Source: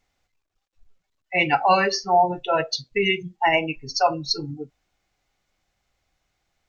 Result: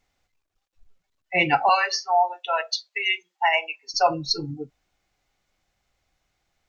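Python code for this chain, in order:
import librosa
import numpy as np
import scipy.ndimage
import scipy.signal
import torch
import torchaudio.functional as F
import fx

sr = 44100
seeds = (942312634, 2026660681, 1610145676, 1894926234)

y = fx.highpass(x, sr, hz=700.0, slope=24, at=(1.69, 3.94))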